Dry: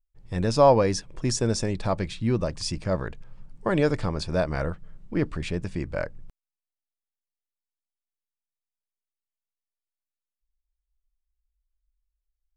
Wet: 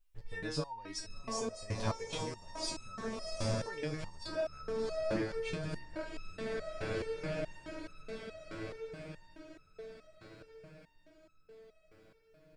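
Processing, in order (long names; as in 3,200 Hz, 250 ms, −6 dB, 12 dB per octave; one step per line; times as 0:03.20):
bass and treble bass −1 dB, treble −9 dB
on a send: feedback delay with all-pass diffusion 717 ms, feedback 58%, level −8.5 dB
on the sum: downward compressor 12 to 1, threshold −38 dBFS, peak gain reduction 26 dB
high-shelf EQ 2,200 Hz +10 dB
feedback delay with all-pass diffusion 1,026 ms, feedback 44%, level −15.5 dB
step-sequenced resonator 4.7 Hz 110–1,300 Hz
level +16.5 dB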